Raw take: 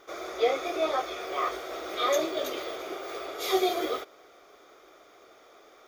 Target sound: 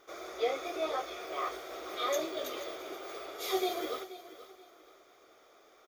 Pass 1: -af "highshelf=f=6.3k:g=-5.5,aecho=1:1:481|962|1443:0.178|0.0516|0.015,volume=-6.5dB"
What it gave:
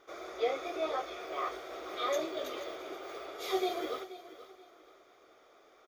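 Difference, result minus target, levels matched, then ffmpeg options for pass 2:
8000 Hz band -4.5 dB
-af "highshelf=f=6.3k:g=4,aecho=1:1:481|962|1443:0.178|0.0516|0.015,volume=-6.5dB"

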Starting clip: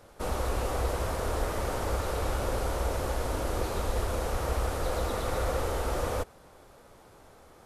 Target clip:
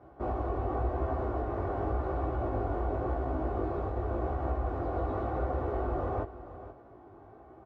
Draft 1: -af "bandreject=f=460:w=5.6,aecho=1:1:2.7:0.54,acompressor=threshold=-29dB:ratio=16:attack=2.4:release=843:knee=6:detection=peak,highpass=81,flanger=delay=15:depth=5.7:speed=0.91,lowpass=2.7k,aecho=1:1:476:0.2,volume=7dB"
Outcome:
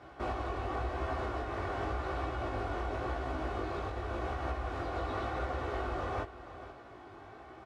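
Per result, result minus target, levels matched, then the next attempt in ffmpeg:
2000 Hz band +10.0 dB; compressor: peak gain reduction +6.5 dB
-af "bandreject=f=460:w=5.6,aecho=1:1:2.7:0.54,acompressor=threshold=-29dB:ratio=16:attack=2.4:release=843:knee=6:detection=peak,highpass=81,flanger=delay=15:depth=5.7:speed=0.91,lowpass=810,aecho=1:1:476:0.2,volume=7dB"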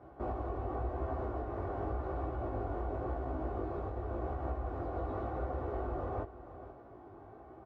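compressor: peak gain reduction +6.5 dB
-af "bandreject=f=460:w=5.6,aecho=1:1:2.7:0.54,acompressor=threshold=-22dB:ratio=16:attack=2.4:release=843:knee=6:detection=peak,highpass=81,flanger=delay=15:depth=5.7:speed=0.91,lowpass=810,aecho=1:1:476:0.2,volume=7dB"

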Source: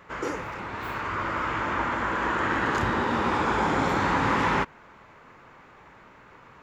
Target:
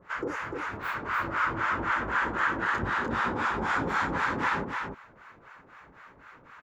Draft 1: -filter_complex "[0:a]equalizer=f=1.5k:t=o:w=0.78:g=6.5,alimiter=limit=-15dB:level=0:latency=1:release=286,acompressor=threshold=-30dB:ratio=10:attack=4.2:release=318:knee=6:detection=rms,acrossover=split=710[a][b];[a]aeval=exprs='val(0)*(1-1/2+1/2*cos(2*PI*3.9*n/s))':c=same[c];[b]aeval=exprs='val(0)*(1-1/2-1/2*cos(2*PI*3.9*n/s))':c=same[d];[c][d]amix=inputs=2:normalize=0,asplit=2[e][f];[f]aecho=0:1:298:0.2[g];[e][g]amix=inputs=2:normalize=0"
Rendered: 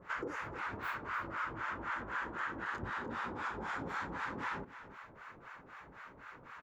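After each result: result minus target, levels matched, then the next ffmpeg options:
compressor: peak gain reduction +11.5 dB; echo-to-direct -9 dB
-filter_complex "[0:a]equalizer=f=1.5k:t=o:w=0.78:g=6.5,alimiter=limit=-15dB:level=0:latency=1:release=286,acrossover=split=710[a][b];[a]aeval=exprs='val(0)*(1-1/2+1/2*cos(2*PI*3.9*n/s))':c=same[c];[b]aeval=exprs='val(0)*(1-1/2-1/2*cos(2*PI*3.9*n/s))':c=same[d];[c][d]amix=inputs=2:normalize=0,asplit=2[e][f];[f]aecho=0:1:298:0.2[g];[e][g]amix=inputs=2:normalize=0"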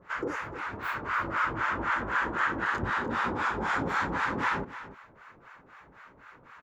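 echo-to-direct -9 dB
-filter_complex "[0:a]equalizer=f=1.5k:t=o:w=0.78:g=6.5,alimiter=limit=-15dB:level=0:latency=1:release=286,acrossover=split=710[a][b];[a]aeval=exprs='val(0)*(1-1/2+1/2*cos(2*PI*3.9*n/s))':c=same[c];[b]aeval=exprs='val(0)*(1-1/2-1/2*cos(2*PI*3.9*n/s))':c=same[d];[c][d]amix=inputs=2:normalize=0,asplit=2[e][f];[f]aecho=0:1:298:0.562[g];[e][g]amix=inputs=2:normalize=0"

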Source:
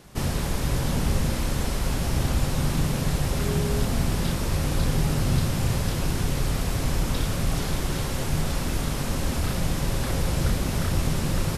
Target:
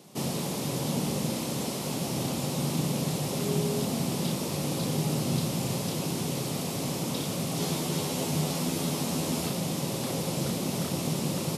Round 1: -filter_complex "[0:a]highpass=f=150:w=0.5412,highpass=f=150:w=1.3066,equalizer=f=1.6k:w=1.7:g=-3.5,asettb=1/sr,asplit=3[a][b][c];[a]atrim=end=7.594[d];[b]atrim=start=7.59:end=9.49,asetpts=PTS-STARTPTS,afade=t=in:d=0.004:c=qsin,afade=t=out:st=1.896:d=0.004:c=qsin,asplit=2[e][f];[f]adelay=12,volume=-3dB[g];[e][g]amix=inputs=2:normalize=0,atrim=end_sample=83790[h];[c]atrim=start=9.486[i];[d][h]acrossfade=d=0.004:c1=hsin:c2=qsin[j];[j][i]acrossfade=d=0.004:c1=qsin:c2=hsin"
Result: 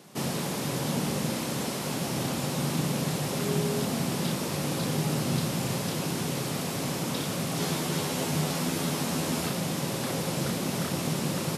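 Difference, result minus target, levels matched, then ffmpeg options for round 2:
2000 Hz band +4.5 dB
-filter_complex "[0:a]highpass=f=150:w=0.5412,highpass=f=150:w=1.3066,equalizer=f=1.6k:w=1.7:g=-12,asettb=1/sr,asplit=3[a][b][c];[a]atrim=end=7.594[d];[b]atrim=start=7.59:end=9.49,asetpts=PTS-STARTPTS,afade=t=in:d=0.004:c=qsin,afade=t=out:st=1.896:d=0.004:c=qsin,asplit=2[e][f];[f]adelay=12,volume=-3dB[g];[e][g]amix=inputs=2:normalize=0,atrim=end_sample=83790[h];[c]atrim=start=9.486[i];[d][h]acrossfade=d=0.004:c1=hsin:c2=qsin[j];[j][i]acrossfade=d=0.004:c1=qsin:c2=hsin"

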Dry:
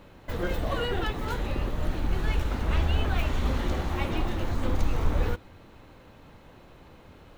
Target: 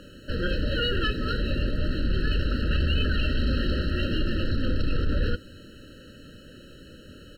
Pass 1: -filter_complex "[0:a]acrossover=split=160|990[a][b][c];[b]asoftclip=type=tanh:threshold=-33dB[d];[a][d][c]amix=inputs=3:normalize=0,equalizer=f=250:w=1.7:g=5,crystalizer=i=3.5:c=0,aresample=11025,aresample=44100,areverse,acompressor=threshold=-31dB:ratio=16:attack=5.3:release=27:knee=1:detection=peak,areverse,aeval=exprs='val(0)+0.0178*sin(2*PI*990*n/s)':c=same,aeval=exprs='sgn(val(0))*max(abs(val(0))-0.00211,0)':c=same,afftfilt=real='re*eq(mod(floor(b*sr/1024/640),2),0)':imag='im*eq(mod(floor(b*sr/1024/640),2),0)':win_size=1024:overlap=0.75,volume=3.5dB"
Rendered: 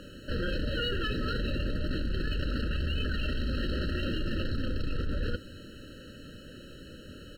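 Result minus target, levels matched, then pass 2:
compressor: peak gain reduction +7 dB
-filter_complex "[0:a]acrossover=split=160|990[a][b][c];[b]asoftclip=type=tanh:threshold=-33dB[d];[a][d][c]amix=inputs=3:normalize=0,equalizer=f=250:w=1.7:g=5,crystalizer=i=3.5:c=0,aresample=11025,aresample=44100,areverse,acompressor=threshold=-23.5dB:ratio=16:attack=5.3:release=27:knee=1:detection=peak,areverse,aeval=exprs='val(0)+0.0178*sin(2*PI*990*n/s)':c=same,aeval=exprs='sgn(val(0))*max(abs(val(0))-0.00211,0)':c=same,afftfilt=real='re*eq(mod(floor(b*sr/1024/640),2),0)':imag='im*eq(mod(floor(b*sr/1024/640),2),0)':win_size=1024:overlap=0.75,volume=3.5dB"

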